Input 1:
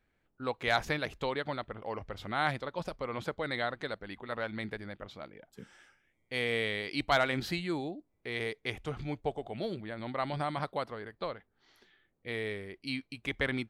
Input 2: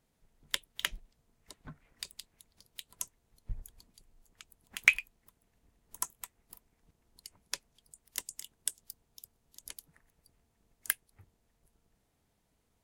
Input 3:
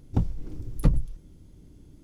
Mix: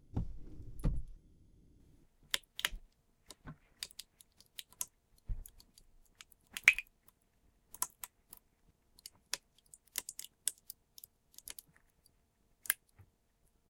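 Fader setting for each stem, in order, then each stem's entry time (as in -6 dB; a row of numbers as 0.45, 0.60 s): off, -2.0 dB, -14.0 dB; off, 1.80 s, 0.00 s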